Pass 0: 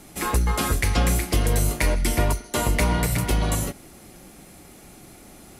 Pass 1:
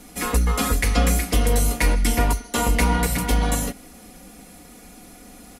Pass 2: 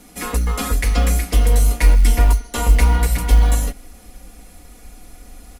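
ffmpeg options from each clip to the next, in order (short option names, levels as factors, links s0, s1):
-af "aecho=1:1:4.1:0.72"
-af "asubboost=boost=7:cutoff=66,acrusher=bits=9:mode=log:mix=0:aa=0.000001,volume=0.891"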